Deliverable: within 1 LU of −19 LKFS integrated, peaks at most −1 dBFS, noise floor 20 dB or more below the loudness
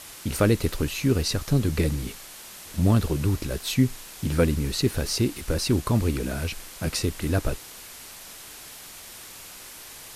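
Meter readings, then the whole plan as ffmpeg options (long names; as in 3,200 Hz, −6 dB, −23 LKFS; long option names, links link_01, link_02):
background noise floor −43 dBFS; target noise floor −46 dBFS; integrated loudness −25.5 LKFS; sample peak −8.5 dBFS; target loudness −19.0 LKFS
→ -af "afftdn=noise_reduction=6:noise_floor=-43"
-af "volume=6.5dB"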